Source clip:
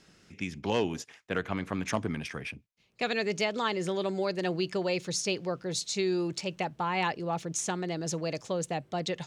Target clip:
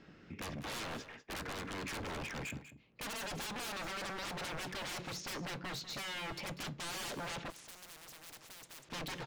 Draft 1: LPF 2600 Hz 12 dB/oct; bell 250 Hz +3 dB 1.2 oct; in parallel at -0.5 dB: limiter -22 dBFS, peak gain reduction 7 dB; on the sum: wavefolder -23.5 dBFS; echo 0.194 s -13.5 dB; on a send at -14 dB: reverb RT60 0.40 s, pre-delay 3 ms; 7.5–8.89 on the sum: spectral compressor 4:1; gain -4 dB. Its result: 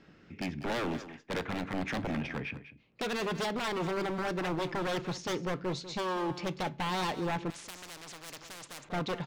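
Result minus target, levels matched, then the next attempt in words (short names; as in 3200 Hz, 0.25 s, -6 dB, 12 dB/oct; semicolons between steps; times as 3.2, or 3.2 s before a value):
wavefolder: distortion -27 dB
LPF 2600 Hz 12 dB/oct; bell 250 Hz +3 dB 1.2 oct; in parallel at -0.5 dB: limiter -22 dBFS, peak gain reduction 7 dB; on the sum: wavefolder -33 dBFS; echo 0.194 s -13.5 dB; on a send at -14 dB: reverb RT60 0.40 s, pre-delay 3 ms; 7.5–8.89 on the sum: spectral compressor 4:1; gain -4 dB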